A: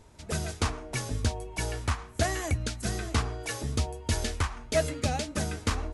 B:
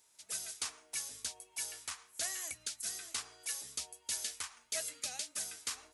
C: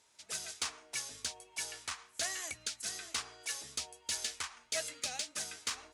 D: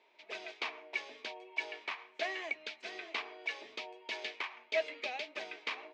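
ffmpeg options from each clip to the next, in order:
-af "aderivative"
-af "adynamicsmooth=sensitivity=3:basefreq=6.9k,volume=5dB"
-af "highpass=f=260:w=0.5412,highpass=f=260:w=1.3066,equalizer=f=380:t=q:w=4:g=9,equalizer=f=630:t=q:w=4:g=7,equalizer=f=950:t=q:w=4:g=4,equalizer=f=1.4k:t=q:w=4:g=-7,equalizer=f=2.3k:t=q:w=4:g=8,lowpass=f=3.4k:w=0.5412,lowpass=f=3.4k:w=1.3066,volume=1.5dB"

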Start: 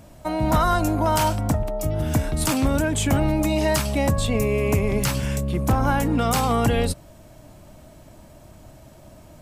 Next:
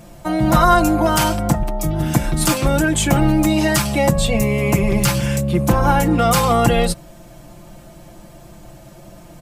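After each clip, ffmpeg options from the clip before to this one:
-af "aecho=1:1:5.8:0.82,volume=4dB"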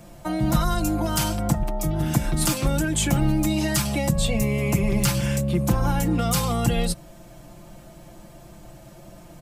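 -filter_complex "[0:a]acrossover=split=260|3000[a][b][c];[b]acompressor=threshold=-23dB:ratio=6[d];[a][d][c]amix=inputs=3:normalize=0,volume=-4dB"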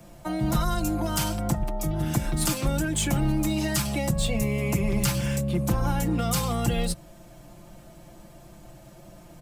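-filter_complex "[0:a]acrossover=split=110|1400|2700[a][b][c][d];[b]aeval=exprs='clip(val(0),-1,0.126)':c=same[e];[d]acrusher=bits=4:mode=log:mix=0:aa=0.000001[f];[a][e][c][f]amix=inputs=4:normalize=0,volume=-3dB"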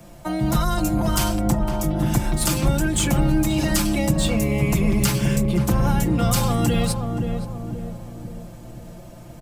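-filter_complex "[0:a]asplit=2[a][b];[b]adelay=524,lowpass=f=910:p=1,volume=-4dB,asplit=2[c][d];[d]adelay=524,lowpass=f=910:p=1,volume=0.54,asplit=2[e][f];[f]adelay=524,lowpass=f=910:p=1,volume=0.54,asplit=2[g][h];[h]adelay=524,lowpass=f=910:p=1,volume=0.54,asplit=2[i][j];[j]adelay=524,lowpass=f=910:p=1,volume=0.54,asplit=2[k][l];[l]adelay=524,lowpass=f=910:p=1,volume=0.54,asplit=2[m][n];[n]adelay=524,lowpass=f=910:p=1,volume=0.54[o];[a][c][e][g][i][k][m][o]amix=inputs=8:normalize=0,volume=4dB"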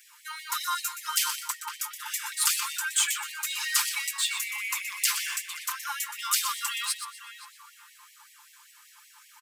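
-af "aecho=1:1:122|244|366:0.316|0.098|0.0304,afftfilt=real='re*gte(b*sr/1024,850*pow(1800/850,0.5+0.5*sin(2*PI*5.2*pts/sr)))':imag='im*gte(b*sr/1024,850*pow(1800/850,0.5+0.5*sin(2*PI*5.2*pts/sr)))':win_size=1024:overlap=0.75"

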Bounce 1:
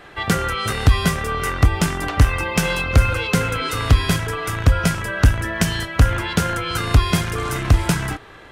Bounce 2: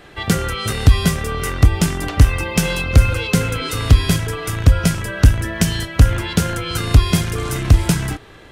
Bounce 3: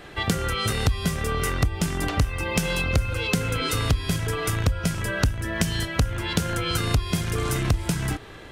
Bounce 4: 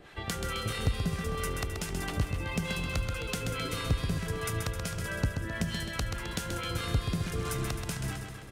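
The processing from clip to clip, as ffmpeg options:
-af "equalizer=f=1.2k:w=0.58:g=-7,volume=3.5dB"
-af "acompressor=threshold=-21dB:ratio=4"
-filter_complex "[0:a]acrossover=split=690[a][b];[a]aeval=exprs='val(0)*(1-0.7/2+0.7/2*cos(2*PI*4.6*n/s))':c=same[c];[b]aeval=exprs='val(0)*(1-0.7/2-0.7/2*cos(2*PI*4.6*n/s))':c=same[d];[c][d]amix=inputs=2:normalize=0,aecho=1:1:131|262|393|524|655|786|917:0.501|0.286|0.163|0.0928|0.0529|0.0302|0.0172,volume=-6dB"

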